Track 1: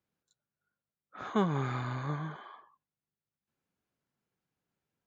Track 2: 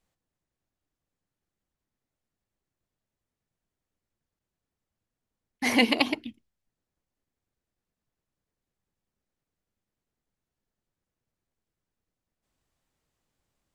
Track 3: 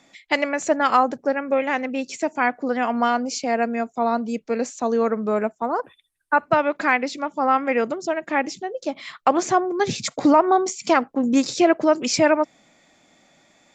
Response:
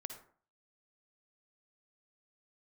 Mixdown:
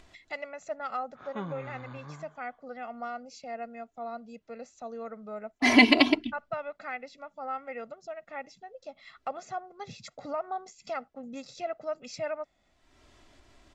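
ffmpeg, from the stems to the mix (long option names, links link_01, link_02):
-filter_complex "[0:a]volume=-2.5dB,afade=type=out:start_time=1.71:duration=0.5:silence=0.398107[link_01];[1:a]aecho=1:1:3:0.83,volume=2dB[link_02];[2:a]bandreject=frequency=3100:width=18,agate=range=-33dB:threshold=-48dB:ratio=3:detection=peak,aecho=1:1:1.5:0.78,volume=-19.5dB,asplit=2[link_03][link_04];[link_04]apad=whole_len=223289[link_05];[link_01][link_05]sidechaincompress=threshold=-44dB:ratio=4:attack=40:release=426[link_06];[link_06][link_02][link_03]amix=inputs=3:normalize=0,lowpass=5400,acompressor=mode=upward:threshold=-42dB:ratio=2.5"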